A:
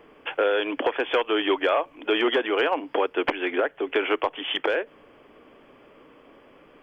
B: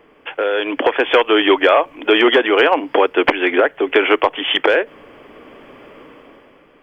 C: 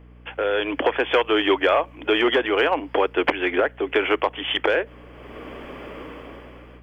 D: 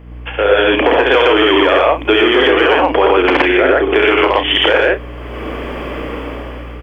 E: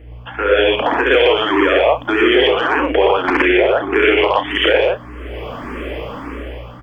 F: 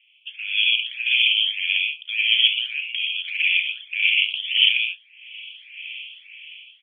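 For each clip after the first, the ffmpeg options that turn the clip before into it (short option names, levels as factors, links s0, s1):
-af "equalizer=f=2000:t=o:w=0.35:g=2.5,dynaudnorm=f=130:g=11:m=3.16,volume=1.19"
-af "aeval=exprs='0.891*(cos(1*acos(clip(val(0)/0.891,-1,1)))-cos(1*PI/2))+0.00562*(cos(7*acos(clip(val(0)/0.891,-1,1)))-cos(7*PI/2))':c=same,dynaudnorm=f=270:g=3:m=3.76,aeval=exprs='val(0)+0.0126*(sin(2*PI*60*n/s)+sin(2*PI*2*60*n/s)/2+sin(2*PI*3*60*n/s)/3+sin(2*PI*4*60*n/s)/4+sin(2*PI*5*60*n/s)/5)':c=same,volume=0.422"
-filter_complex "[0:a]asplit=2[s0][s1];[s1]adelay=34,volume=0.299[s2];[s0][s2]amix=inputs=2:normalize=0,aecho=1:1:67.06|119.5:0.631|1,alimiter=level_in=3.16:limit=0.891:release=50:level=0:latency=1,volume=0.891"
-filter_complex "[0:a]asplit=2[s0][s1];[s1]afreqshift=1.7[s2];[s0][s2]amix=inputs=2:normalize=1"
-af "asuperpass=centerf=2900:order=8:qfactor=2.5,volume=1.5"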